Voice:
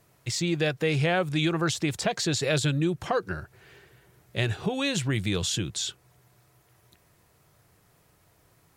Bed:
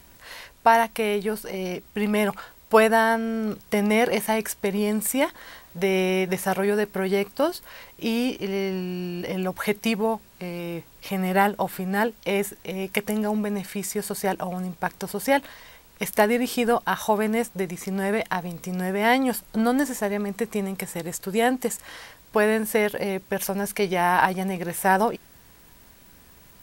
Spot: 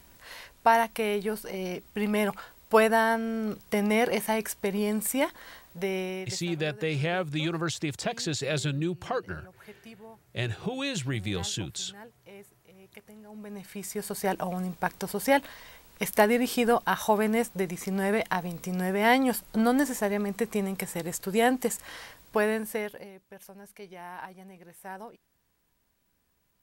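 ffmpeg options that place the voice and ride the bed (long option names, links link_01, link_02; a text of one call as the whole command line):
ffmpeg -i stem1.wav -i stem2.wav -filter_complex "[0:a]adelay=6000,volume=-4dB[link_01];[1:a]volume=18.5dB,afade=type=out:start_time=5.52:duration=0.95:silence=0.0944061,afade=type=in:start_time=13.28:duration=1.16:silence=0.0749894,afade=type=out:start_time=22.08:duration=1.03:silence=0.105925[link_02];[link_01][link_02]amix=inputs=2:normalize=0" out.wav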